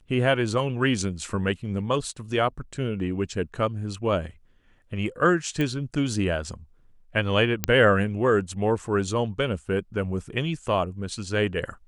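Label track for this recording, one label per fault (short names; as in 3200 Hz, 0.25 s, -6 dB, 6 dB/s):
5.610000	5.610000	pop -15 dBFS
7.640000	7.640000	pop -5 dBFS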